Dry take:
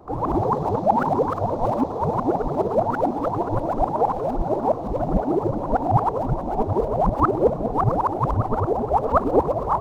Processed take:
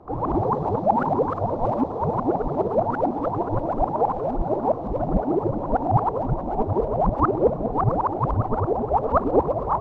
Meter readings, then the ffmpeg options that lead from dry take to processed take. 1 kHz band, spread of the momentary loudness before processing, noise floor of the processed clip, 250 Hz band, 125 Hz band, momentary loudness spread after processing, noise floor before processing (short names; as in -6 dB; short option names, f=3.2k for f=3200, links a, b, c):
-1.5 dB, 4 LU, -30 dBFS, -0.5 dB, -0.5 dB, 4 LU, -29 dBFS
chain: -af "aemphasis=mode=reproduction:type=75fm,volume=-1.5dB"